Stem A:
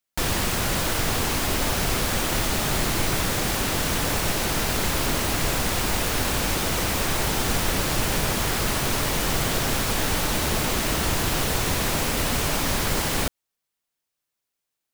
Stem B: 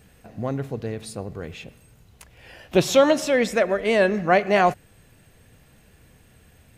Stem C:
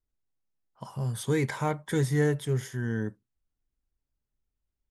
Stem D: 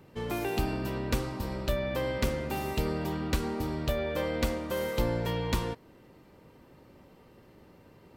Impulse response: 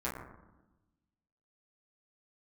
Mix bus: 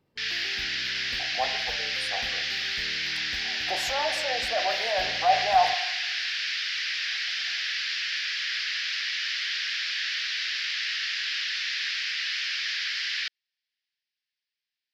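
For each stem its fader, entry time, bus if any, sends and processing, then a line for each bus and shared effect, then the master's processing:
+2.0 dB, 0.00 s, no send, elliptic band-pass 1.7–5.1 kHz, stop band 40 dB
-9.5 dB, 0.95 s, send -9 dB, peak limiter -16 dBFS, peak gain reduction 10.5 dB; resonant high-pass 760 Hz, resonance Q 9.2; reverb removal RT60 2 s
mute
-17.0 dB, 0.00 s, no send, none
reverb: on, RT60 1.0 s, pre-delay 7 ms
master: transient shaper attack -3 dB, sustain +2 dB

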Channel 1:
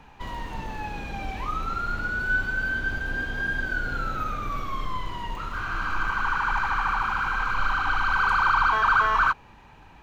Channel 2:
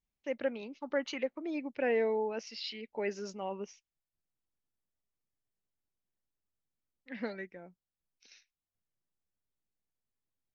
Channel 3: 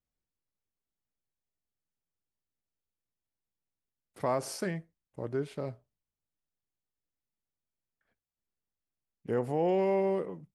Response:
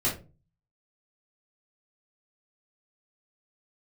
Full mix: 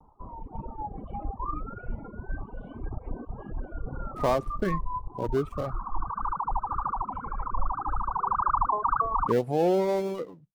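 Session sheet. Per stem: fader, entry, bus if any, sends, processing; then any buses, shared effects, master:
-6.0 dB, 0.00 s, no send, reverb removal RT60 1.8 s; steep low-pass 1.2 kHz 72 dB/octave; vibrato 1.8 Hz 67 cents
2.94 s -19.5 dB -> 3.60 s -9.5 dB, 0.00 s, no send, cascade formant filter i; level rider gain up to 8.5 dB; Shepard-style flanger rising 1.3 Hz
-2.5 dB, 0.00 s, no send, dead-time distortion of 0.13 ms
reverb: none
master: reverb removal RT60 1.5 s; treble shelf 2.9 kHz -9 dB; level rider gain up to 9 dB

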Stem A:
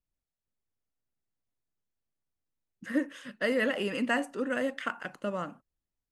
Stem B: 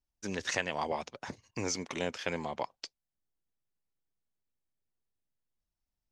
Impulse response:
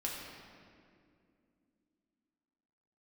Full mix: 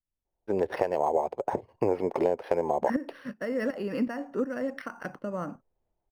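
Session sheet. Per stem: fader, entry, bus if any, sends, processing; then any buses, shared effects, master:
+2.5 dB, 0.00 s, no send, compression 6:1, threshold -31 dBFS, peak gain reduction 8.5 dB; tremolo saw up 2.7 Hz, depth 65%
+0.5 dB, 0.25 s, no send, high-order bell 570 Hz +13.5 dB; compression 6:1, threshold -27 dBFS, peak gain reduction 10.5 dB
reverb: none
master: level rider gain up to 7 dB; tape spacing loss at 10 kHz 36 dB; decimation joined by straight lines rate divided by 6×

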